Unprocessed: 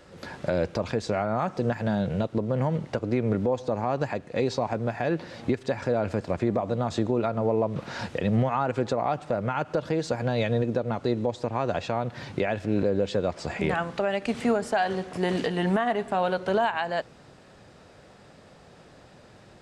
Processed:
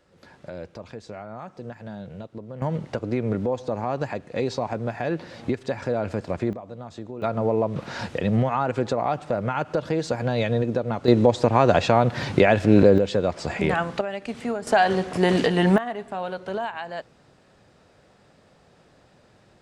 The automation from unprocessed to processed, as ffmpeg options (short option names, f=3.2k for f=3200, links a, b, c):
-af "asetnsamples=n=441:p=0,asendcmd='2.62 volume volume 0dB;6.53 volume volume -11dB;7.22 volume volume 2dB;11.08 volume volume 10dB;12.98 volume volume 3.5dB;14.01 volume volume -4dB;14.67 volume volume 6.5dB;15.78 volume volume -5dB',volume=-11dB"